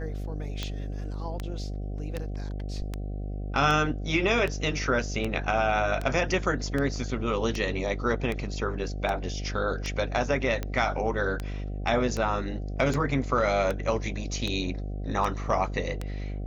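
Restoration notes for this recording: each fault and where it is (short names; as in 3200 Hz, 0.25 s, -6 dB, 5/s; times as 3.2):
buzz 50 Hz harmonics 15 -33 dBFS
tick 78 rpm -17 dBFS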